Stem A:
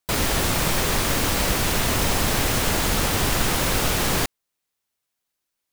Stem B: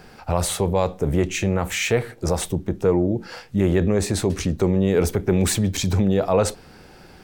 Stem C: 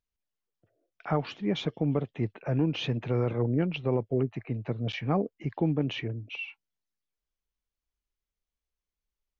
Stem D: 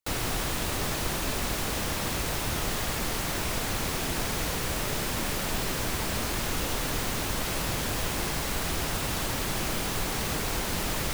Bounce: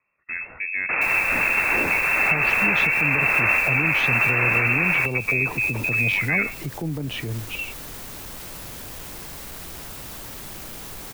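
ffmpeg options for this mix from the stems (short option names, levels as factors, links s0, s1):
-filter_complex "[0:a]adelay=800,volume=1.33[s0];[1:a]agate=range=0.1:threshold=0.0178:ratio=16:detection=peak,lowpass=f=2900:t=q:w=4.8,volume=0.316,asplit=2[s1][s2];[2:a]adelay=1200,volume=1[s3];[3:a]asoftclip=type=tanh:threshold=0.0596,adelay=950,volume=0.188[s4];[s2]apad=whole_len=287669[s5];[s0][s5]sidechaincompress=threshold=0.0316:ratio=8:attack=43:release=643[s6];[s6][s1]amix=inputs=2:normalize=0,lowpass=f=2300:t=q:w=0.5098,lowpass=f=2300:t=q:w=0.6013,lowpass=f=2300:t=q:w=0.9,lowpass=f=2300:t=q:w=2.563,afreqshift=-2700,acompressor=threshold=0.0501:ratio=2.5,volume=1[s7];[s3][s4]amix=inputs=2:normalize=0,acrossover=split=160[s8][s9];[s9]acompressor=threshold=0.02:ratio=2[s10];[s8][s10]amix=inputs=2:normalize=0,alimiter=level_in=1.5:limit=0.0631:level=0:latency=1:release=69,volume=0.668,volume=1[s11];[s7][s11]amix=inputs=2:normalize=0,highshelf=f=11000:g=10.5,dynaudnorm=f=560:g=3:m=2.24"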